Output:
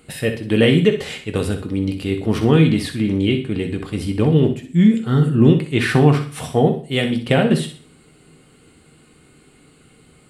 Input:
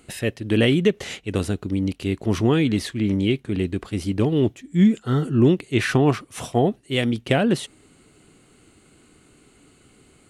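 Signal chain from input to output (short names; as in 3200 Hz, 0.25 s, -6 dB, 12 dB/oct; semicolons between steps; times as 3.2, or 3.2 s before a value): bell 6300 Hz -8.5 dB 0.3 oct; flutter echo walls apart 10.6 m, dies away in 0.36 s; reverb RT60 0.40 s, pre-delay 3 ms, DRR 5 dB; gain +2 dB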